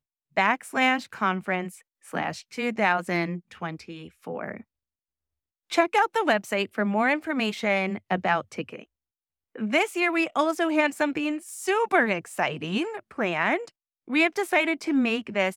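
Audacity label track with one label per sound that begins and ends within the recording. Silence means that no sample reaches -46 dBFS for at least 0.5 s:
5.700000	8.840000	sound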